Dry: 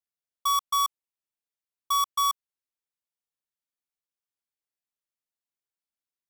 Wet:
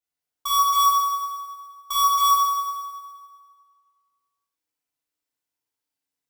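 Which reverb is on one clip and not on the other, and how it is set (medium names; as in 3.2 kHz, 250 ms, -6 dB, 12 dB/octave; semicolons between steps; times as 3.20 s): FDN reverb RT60 1.9 s, low-frequency decay 0.75×, high-frequency decay 0.8×, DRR -8 dB; trim -2 dB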